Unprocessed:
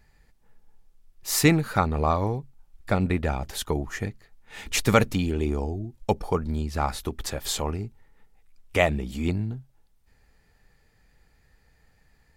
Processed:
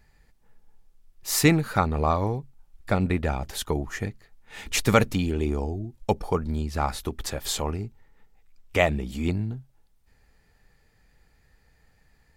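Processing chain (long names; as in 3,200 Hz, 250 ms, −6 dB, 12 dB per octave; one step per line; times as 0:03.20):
0:07.86–0:08.87: parametric band 10,000 Hz −9.5 dB 0.2 octaves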